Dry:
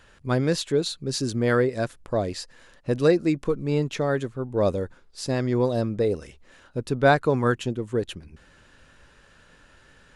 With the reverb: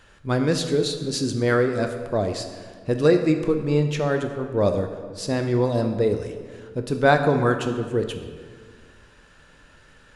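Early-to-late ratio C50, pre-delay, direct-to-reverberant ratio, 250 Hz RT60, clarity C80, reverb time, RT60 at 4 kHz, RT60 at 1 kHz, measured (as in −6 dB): 8.0 dB, 6 ms, 5.5 dB, 1.9 s, 9.0 dB, 1.8 s, 1.2 s, 1.7 s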